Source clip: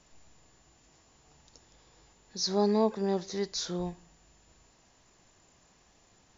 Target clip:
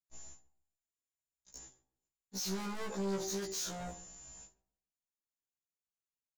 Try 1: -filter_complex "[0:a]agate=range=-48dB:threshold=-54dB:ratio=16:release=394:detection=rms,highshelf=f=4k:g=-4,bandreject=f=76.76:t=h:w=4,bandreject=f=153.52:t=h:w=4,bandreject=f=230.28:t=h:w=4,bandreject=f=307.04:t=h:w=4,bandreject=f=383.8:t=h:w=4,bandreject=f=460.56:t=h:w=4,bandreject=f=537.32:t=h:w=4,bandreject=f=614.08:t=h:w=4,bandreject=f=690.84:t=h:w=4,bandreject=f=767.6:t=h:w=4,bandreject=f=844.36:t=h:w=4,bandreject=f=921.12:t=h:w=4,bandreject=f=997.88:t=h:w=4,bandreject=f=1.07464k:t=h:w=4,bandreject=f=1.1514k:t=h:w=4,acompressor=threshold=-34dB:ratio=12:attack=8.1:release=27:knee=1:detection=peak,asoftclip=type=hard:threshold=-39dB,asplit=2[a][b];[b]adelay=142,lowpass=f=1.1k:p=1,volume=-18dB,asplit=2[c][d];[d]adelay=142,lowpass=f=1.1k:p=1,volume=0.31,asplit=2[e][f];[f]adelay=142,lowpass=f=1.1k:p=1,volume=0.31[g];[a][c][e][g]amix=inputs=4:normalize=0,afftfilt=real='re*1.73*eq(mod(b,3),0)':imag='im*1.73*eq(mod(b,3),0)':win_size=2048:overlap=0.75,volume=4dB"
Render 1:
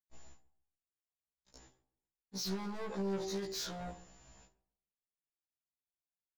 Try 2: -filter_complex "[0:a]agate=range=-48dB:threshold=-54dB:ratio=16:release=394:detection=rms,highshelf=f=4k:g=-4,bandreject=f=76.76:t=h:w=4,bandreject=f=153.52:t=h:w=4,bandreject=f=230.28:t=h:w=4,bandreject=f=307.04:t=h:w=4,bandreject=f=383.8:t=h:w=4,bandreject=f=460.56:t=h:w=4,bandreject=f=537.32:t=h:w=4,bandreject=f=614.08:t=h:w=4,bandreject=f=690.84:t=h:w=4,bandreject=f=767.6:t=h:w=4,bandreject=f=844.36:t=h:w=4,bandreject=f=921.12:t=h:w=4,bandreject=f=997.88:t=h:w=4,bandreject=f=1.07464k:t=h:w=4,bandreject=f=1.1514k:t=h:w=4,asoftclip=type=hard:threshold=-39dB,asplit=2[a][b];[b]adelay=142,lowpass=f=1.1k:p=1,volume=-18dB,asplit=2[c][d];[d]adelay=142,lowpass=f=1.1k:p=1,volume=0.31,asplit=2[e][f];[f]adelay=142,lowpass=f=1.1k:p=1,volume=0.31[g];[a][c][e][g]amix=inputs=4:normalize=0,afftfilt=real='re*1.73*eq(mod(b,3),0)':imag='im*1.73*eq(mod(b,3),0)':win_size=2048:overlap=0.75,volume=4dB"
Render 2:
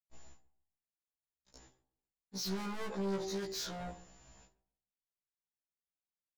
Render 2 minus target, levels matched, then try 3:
8000 Hz band -6.0 dB
-filter_complex "[0:a]agate=range=-48dB:threshold=-54dB:ratio=16:release=394:detection=rms,lowpass=f=6.7k:t=q:w=6.3,highshelf=f=4k:g=-4,bandreject=f=76.76:t=h:w=4,bandreject=f=153.52:t=h:w=4,bandreject=f=230.28:t=h:w=4,bandreject=f=307.04:t=h:w=4,bandreject=f=383.8:t=h:w=4,bandreject=f=460.56:t=h:w=4,bandreject=f=537.32:t=h:w=4,bandreject=f=614.08:t=h:w=4,bandreject=f=690.84:t=h:w=4,bandreject=f=767.6:t=h:w=4,bandreject=f=844.36:t=h:w=4,bandreject=f=921.12:t=h:w=4,bandreject=f=997.88:t=h:w=4,bandreject=f=1.07464k:t=h:w=4,bandreject=f=1.1514k:t=h:w=4,asoftclip=type=hard:threshold=-39dB,asplit=2[a][b];[b]adelay=142,lowpass=f=1.1k:p=1,volume=-18dB,asplit=2[c][d];[d]adelay=142,lowpass=f=1.1k:p=1,volume=0.31,asplit=2[e][f];[f]adelay=142,lowpass=f=1.1k:p=1,volume=0.31[g];[a][c][e][g]amix=inputs=4:normalize=0,afftfilt=real='re*1.73*eq(mod(b,3),0)':imag='im*1.73*eq(mod(b,3),0)':win_size=2048:overlap=0.75,volume=4dB"

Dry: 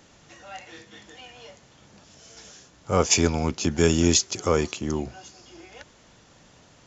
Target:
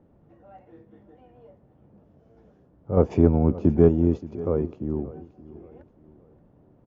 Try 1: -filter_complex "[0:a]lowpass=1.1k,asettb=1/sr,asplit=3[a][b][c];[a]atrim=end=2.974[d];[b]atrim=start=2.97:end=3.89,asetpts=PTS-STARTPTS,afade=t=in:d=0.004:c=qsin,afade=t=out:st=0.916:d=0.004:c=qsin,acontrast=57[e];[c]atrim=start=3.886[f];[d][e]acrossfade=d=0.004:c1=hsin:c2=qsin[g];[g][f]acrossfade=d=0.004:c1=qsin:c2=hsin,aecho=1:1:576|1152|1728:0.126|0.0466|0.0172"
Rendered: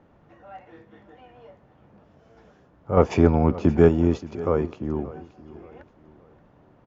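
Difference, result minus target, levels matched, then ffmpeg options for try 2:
1000 Hz band +7.0 dB
-filter_complex "[0:a]lowpass=510,asettb=1/sr,asplit=3[a][b][c];[a]atrim=end=2.974[d];[b]atrim=start=2.97:end=3.89,asetpts=PTS-STARTPTS,afade=t=in:d=0.004:c=qsin,afade=t=out:st=0.916:d=0.004:c=qsin,acontrast=57[e];[c]atrim=start=3.886[f];[d][e]acrossfade=d=0.004:c1=hsin:c2=qsin[g];[g][f]acrossfade=d=0.004:c1=qsin:c2=hsin,aecho=1:1:576|1152|1728:0.126|0.0466|0.0172"

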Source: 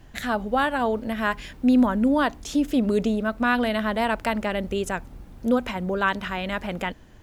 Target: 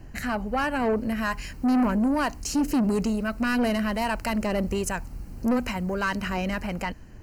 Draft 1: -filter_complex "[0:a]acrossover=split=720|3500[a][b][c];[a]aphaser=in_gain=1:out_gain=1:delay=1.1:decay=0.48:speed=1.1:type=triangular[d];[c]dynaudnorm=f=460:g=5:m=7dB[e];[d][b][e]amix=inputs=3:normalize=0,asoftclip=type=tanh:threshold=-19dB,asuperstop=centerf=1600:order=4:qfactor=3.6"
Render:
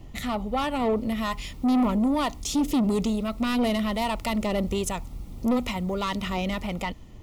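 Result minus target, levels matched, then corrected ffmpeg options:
2000 Hz band -5.0 dB
-filter_complex "[0:a]acrossover=split=720|3500[a][b][c];[a]aphaser=in_gain=1:out_gain=1:delay=1.1:decay=0.48:speed=1.1:type=triangular[d];[c]dynaudnorm=f=460:g=5:m=7dB[e];[d][b][e]amix=inputs=3:normalize=0,asoftclip=type=tanh:threshold=-19dB,asuperstop=centerf=3500:order=4:qfactor=3.6"

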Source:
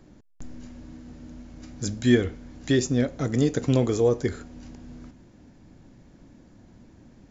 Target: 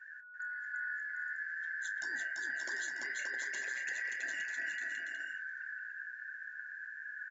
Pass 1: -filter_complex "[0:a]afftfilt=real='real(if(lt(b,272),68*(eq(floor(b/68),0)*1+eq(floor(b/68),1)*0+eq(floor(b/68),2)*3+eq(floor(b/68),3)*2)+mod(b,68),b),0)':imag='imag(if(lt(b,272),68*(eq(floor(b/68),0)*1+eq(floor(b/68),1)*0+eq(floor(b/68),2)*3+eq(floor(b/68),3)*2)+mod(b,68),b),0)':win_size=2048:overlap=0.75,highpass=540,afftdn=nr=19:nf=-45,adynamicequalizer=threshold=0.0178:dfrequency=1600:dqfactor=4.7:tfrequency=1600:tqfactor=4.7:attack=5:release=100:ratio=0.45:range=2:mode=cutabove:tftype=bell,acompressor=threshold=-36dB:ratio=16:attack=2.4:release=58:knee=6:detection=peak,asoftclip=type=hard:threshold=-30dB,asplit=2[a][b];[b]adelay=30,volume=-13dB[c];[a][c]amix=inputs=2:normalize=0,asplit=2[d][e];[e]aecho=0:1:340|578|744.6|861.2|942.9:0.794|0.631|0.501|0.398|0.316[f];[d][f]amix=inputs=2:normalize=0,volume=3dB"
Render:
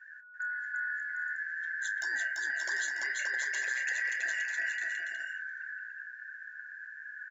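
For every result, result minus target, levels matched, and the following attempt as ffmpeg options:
250 Hz band -8.5 dB; compressor: peak gain reduction -6.5 dB
-filter_complex "[0:a]afftfilt=real='real(if(lt(b,272),68*(eq(floor(b/68),0)*1+eq(floor(b/68),1)*0+eq(floor(b/68),2)*3+eq(floor(b/68),3)*2)+mod(b,68),b),0)':imag='imag(if(lt(b,272),68*(eq(floor(b/68),0)*1+eq(floor(b/68),1)*0+eq(floor(b/68),2)*3+eq(floor(b/68),3)*2)+mod(b,68),b),0)':win_size=2048:overlap=0.75,highpass=260,afftdn=nr=19:nf=-45,adynamicequalizer=threshold=0.0178:dfrequency=1600:dqfactor=4.7:tfrequency=1600:tqfactor=4.7:attack=5:release=100:ratio=0.45:range=2:mode=cutabove:tftype=bell,acompressor=threshold=-36dB:ratio=16:attack=2.4:release=58:knee=6:detection=peak,asoftclip=type=hard:threshold=-30dB,asplit=2[a][b];[b]adelay=30,volume=-13dB[c];[a][c]amix=inputs=2:normalize=0,asplit=2[d][e];[e]aecho=0:1:340|578|744.6|861.2|942.9:0.794|0.631|0.501|0.398|0.316[f];[d][f]amix=inputs=2:normalize=0,volume=3dB"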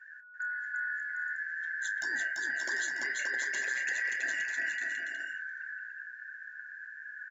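compressor: peak gain reduction -6 dB
-filter_complex "[0:a]afftfilt=real='real(if(lt(b,272),68*(eq(floor(b/68),0)*1+eq(floor(b/68),1)*0+eq(floor(b/68),2)*3+eq(floor(b/68),3)*2)+mod(b,68),b),0)':imag='imag(if(lt(b,272),68*(eq(floor(b/68),0)*1+eq(floor(b/68),1)*0+eq(floor(b/68),2)*3+eq(floor(b/68),3)*2)+mod(b,68),b),0)':win_size=2048:overlap=0.75,highpass=260,afftdn=nr=19:nf=-45,adynamicequalizer=threshold=0.0178:dfrequency=1600:dqfactor=4.7:tfrequency=1600:tqfactor=4.7:attack=5:release=100:ratio=0.45:range=2:mode=cutabove:tftype=bell,acompressor=threshold=-42.5dB:ratio=16:attack=2.4:release=58:knee=6:detection=peak,asoftclip=type=hard:threshold=-30dB,asplit=2[a][b];[b]adelay=30,volume=-13dB[c];[a][c]amix=inputs=2:normalize=0,asplit=2[d][e];[e]aecho=0:1:340|578|744.6|861.2|942.9:0.794|0.631|0.501|0.398|0.316[f];[d][f]amix=inputs=2:normalize=0,volume=3dB"

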